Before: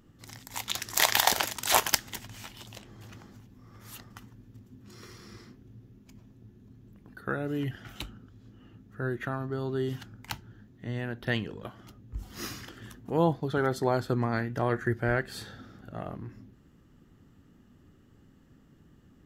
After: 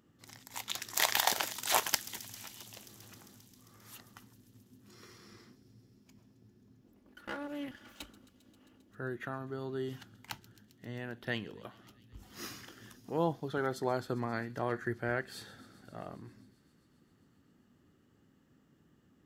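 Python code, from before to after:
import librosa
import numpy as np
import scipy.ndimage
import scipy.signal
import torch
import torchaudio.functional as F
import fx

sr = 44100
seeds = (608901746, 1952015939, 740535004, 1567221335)

y = fx.lower_of_two(x, sr, delay_ms=3.5, at=(6.81, 8.92))
y = fx.highpass(y, sr, hz=170.0, slope=6)
y = fx.echo_wet_highpass(y, sr, ms=133, feedback_pct=83, hz=4100.0, wet_db=-16)
y = y * 10.0 ** (-5.5 / 20.0)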